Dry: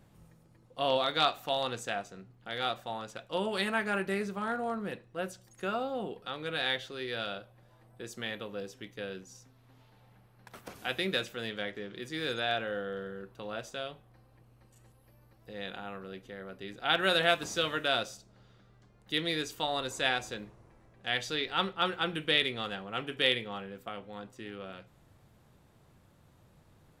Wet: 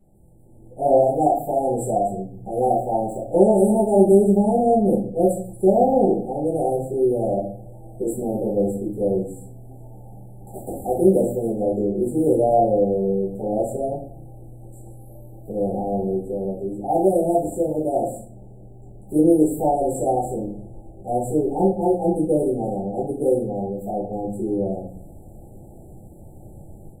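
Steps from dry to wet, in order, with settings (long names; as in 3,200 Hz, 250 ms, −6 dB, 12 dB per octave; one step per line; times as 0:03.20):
0:02.71–0:03.32: running median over 3 samples
automatic gain control gain up to 15 dB
linear-phase brick-wall band-stop 880–7,200 Hz
rectangular room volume 46 cubic metres, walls mixed, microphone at 1.6 metres
level −6 dB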